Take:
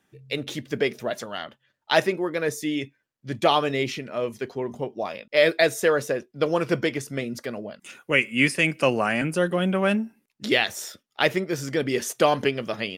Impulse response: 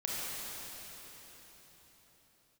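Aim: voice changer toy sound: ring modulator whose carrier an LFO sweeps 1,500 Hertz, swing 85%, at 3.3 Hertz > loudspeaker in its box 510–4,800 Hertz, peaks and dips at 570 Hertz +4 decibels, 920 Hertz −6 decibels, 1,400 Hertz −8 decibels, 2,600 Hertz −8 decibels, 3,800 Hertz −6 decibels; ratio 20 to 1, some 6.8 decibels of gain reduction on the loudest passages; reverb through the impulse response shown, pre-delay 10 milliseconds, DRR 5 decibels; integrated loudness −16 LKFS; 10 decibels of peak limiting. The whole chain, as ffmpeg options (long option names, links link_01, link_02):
-filter_complex "[0:a]acompressor=threshold=-20dB:ratio=20,alimiter=limit=-17.5dB:level=0:latency=1,asplit=2[link_01][link_02];[1:a]atrim=start_sample=2205,adelay=10[link_03];[link_02][link_03]afir=irnorm=-1:irlink=0,volume=-10.5dB[link_04];[link_01][link_04]amix=inputs=2:normalize=0,aeval=exprs='val(0)*sin(2*PI*1500*n/s+1500*0.85/3.3*sin(2*PI*3.3*n/s))':channel_layout=same,highpass=510,equalizer=frequency=570:width_type=q:width=4:gain=4,equalizer=frequency=920:width_type=q:width=4:gain=-6,equalizer=frequency=1400:width_type=q:width=4:gain=-8,equalizer=frequency=2600:width_type=q:width=4:gain=-8,equalizer=frequency=3800:width_type=q:width=4:gain=-6,lowpass=frequency=4800:width=0.5412,lowpass=frequency=4800:width=1.3066,volume=19.5dB"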